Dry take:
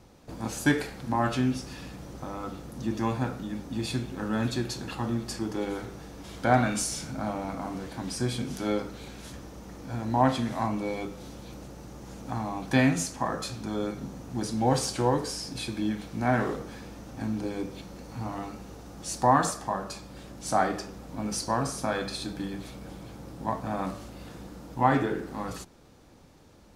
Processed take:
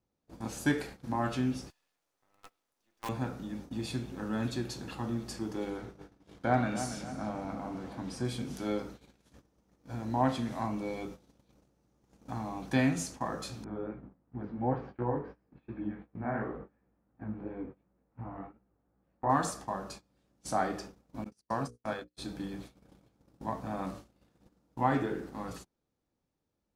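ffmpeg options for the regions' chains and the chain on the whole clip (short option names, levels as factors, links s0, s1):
-filter_complex "[0:a]asettb=1/sr,asplit=3[s0][s1][s2];[s0]atrim=end=1.704[s3];[s1]atrim=start=1.7:end=3.09,asetpts=PTS-STARTPTS,afade=t=in:d=0.004:c=qsin,afade=t=out:st=1.386:d=0.004:c=qsin,highpass=750,acrusher=bits=6:dc=4:mix=0:aa=0.000001[s4];[s2]atrim=start=3.086[s5];[s3][s4]acrossfade=d=0.004:c1=hsin:c2=qsin[s6];[s6][s5]acrossfade=d=0.004:c1=qsin:c2=hsin,asettb=1/sr,asplit=3[s7][s8][s9];[s7]atrim=end=5.704[s10];[s8]atrim=start=5.7:end=8.25,asetpts=PTS-STARTPTS,afade=t=in:d=0.004:c=qsin,afade=t=out:st=2.546:d=0.004:c=qsin,highshelf=f=5300:g=-8,asplit=2[s11][s12];[s12]adelay=281,lowpass=f=3700:p=1,volume=0.316,asplit=2[s13][s14];[s14]adelay=281,lowpass=f=3700:p=1,volume=0.45,asplit=2[s15][s16];[s16]adelay=281,lowpass=f=3700:p=1,volume=0.45,asplit=2[s17][s18];[s18]adelay=281,lowpass=f=3700:p=1,volume=0.45,asplit=2[s19][s20];[s20]adelay=281,lowpass=f=3700:p=1,volume=0.45[s21];[s11][s13][s15][s17][s19][s21]amix=inputs=6:normalize=0,atrim=end_sample=112455[s22];[s9]atrim=start=8.246[s23];[s10][s22]acrossfade=d=0.004:c1=hsin:c2=qsin[s24];[s24][s23]acrossfade=d=0.004:c1=qsin:c2=hsin,asettb=1/sr,asplit=3[s25][s26][s27];[s25]atrim=end=13.644[s28];[s26]atrim=start=13.64:end=19.3,asetpts=PTS-STARTPTS,afade=t=in:d=0.004:c=qsin,afade=t=out:st=5.656:d=0.004:c=qsin,lowpass=f=2000:w=0.5412,lowpass=f=2000:w=1.3066,flanger=delay=15.5:depth=6.2:speed=2.8[s29];[s27]atrim=start=19.296[s30];[s28][s29]acrossfade=d=0.004:c1=hsin:c2=qsin[s31];[s31][s30]acrossfade=d=0.004:c1=qsin:c2=hsin,asettb=1/sr,asplit=3[s32][s33][s34];[s32]atrim=end=21.244[s35];[s33]atrim=start=21.24:end=22.17,asetpts=PTS-STARTPTS,afade=t=in:d=0.004:c=qsin,afade=t=out:st=0.926:d=0.004:c=qsin,agate=range=0.02:threshold=0.0316:ratio=16:release=100:detection=peak,bandreject=f=60:t=h:w=6,bandreject=f=120:t=h:w=6,bandreject=f=180:t=h:w=6,bandreject=f=240:t=h:w=6,bandreject=f=300:t=h:w=6,bandreject=f=360:t=h:w=6,bandreject=f=420:t=h:w=6,bandreject=f=480:t=h:w=6,bandreject=f=540:t=h:w=6[s36];[s34]atrim=start=22.166[s37];[s35][s36]acrossfade=d=0.004:c1=hsin:c2=qsin[s38];[s38][s37]acrossfade=d=0.004:c1=qsin:c2=hsin,agate=range=0.0708:threshold=0.0112:ratio=16:detection=peak,equalizer=f=260:t=o:w=2.4:g=2,volume=0.473"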